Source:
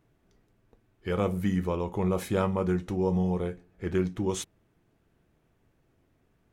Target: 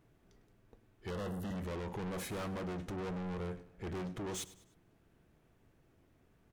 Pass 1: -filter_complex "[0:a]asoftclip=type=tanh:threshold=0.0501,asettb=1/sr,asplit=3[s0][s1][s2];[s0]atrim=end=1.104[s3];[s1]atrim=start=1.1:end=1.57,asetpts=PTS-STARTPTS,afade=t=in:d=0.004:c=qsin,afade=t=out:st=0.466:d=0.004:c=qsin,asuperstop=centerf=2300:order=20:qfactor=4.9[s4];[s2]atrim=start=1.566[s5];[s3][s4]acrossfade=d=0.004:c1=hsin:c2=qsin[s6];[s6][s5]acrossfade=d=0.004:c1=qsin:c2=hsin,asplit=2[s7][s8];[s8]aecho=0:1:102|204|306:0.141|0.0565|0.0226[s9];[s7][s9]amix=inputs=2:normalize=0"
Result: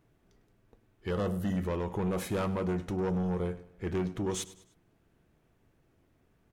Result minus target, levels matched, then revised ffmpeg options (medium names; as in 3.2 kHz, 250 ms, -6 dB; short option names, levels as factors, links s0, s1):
saturation: distortion -7 dB
-filter_complex "[0:a]asoftclip=type=tanh:threshold=0.0126,asettb=1/sr,asplit=3[s0][s1][s2];[s0]atrim=end=1.104[s3];[s1]atrim=start=1.1:end=1.57,asetpts=PTS-STARTPTS,afade=t=in:d=0.004:c=qsin,afade=t=out:st=0.466:d=0.004:c=qsin,asuperstop=centerf=2300:order=20:qfactor=4.9[s4];[s2]atrim=start=1.566[s5];[s3][s4]acrossfade=d=0.004:c1=hsin:c2=qsin[s6];[s6][s5]acrossfade=d=0.004:c1=qsin:c2=hsin,asplit=2[s7][s8];[s8]aecho=0:1:102|204|306:0.141|0.0565|0.0226[s9];[s7][s9]amix=inputs=2:normalize=0"